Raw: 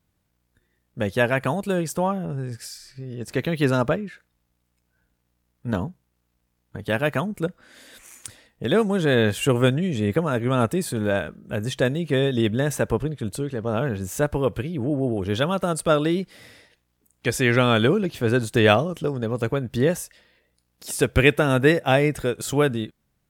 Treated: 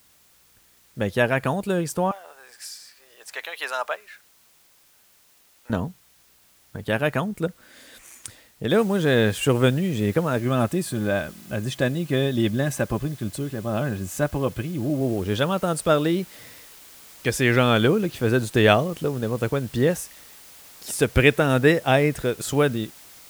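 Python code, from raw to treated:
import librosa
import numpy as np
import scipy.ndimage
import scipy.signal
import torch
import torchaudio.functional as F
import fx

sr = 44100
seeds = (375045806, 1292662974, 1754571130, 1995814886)

y = fx.highpass(x, sr, hz=710.0, slope=24, at=(2.11, 5.7))
y = fx.noise_floor_step(y, sr, seeds[0], at_s=8.7, before_db=-58, after_db=-47, tilt_db=0.0)
y = fx.notch_comb(y, sr, f0_hz=460.0, at=(10.4, 15.01))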